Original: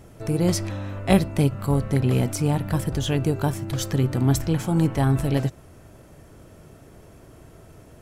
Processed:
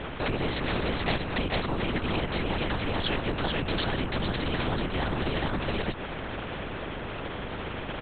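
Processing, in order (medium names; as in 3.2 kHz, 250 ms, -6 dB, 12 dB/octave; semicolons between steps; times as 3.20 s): delay 436 ms -3 dB; compression, threshold -28 dBFS, peak gain reduction 16 dB; LPC vocoder at 8 kHz whisper; spectrum-flattening compressor 2:1; trim +2 dB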